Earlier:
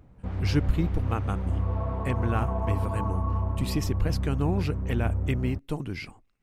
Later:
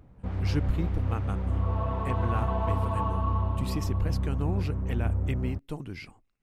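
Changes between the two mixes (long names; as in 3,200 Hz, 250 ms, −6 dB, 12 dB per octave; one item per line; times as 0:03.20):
speech −5.0 dB
second sound: remove low-pass filter 1,000 Hz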